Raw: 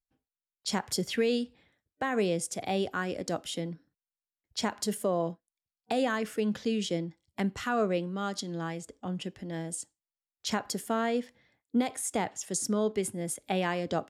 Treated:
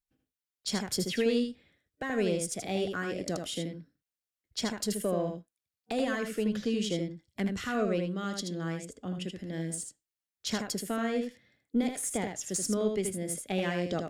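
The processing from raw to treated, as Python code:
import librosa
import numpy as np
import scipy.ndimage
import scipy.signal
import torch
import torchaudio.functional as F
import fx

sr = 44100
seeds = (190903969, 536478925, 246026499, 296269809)

y = fx.diode_clip(x, sr, knee_db=-18.5)
y = fx.peak_eq(y, sr, hz=900.0, db=-9.5, octaves=0.63)
y = y + 10.0 ** (-5.5 / 20.0) * np.pad(y, (int(79 * sr / 1000.0), 0))[:len(y)]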